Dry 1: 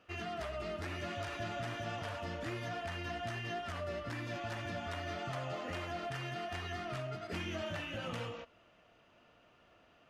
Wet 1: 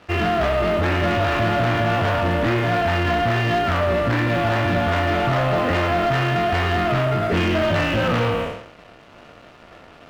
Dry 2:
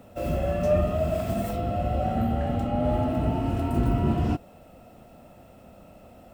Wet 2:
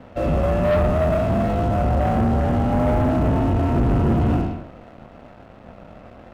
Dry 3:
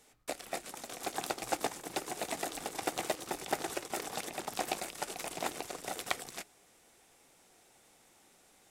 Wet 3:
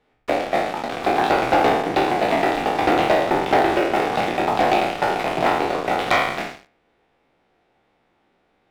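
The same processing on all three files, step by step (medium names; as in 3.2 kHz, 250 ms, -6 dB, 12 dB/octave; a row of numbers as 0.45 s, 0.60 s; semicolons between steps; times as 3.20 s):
spectral sustain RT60 0.80 s; distance through air 380 m; waveshaping leveller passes 3; normalise loudness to -20 LUFS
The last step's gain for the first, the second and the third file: +12.5 dB, -2.0 dB, +7.0 dB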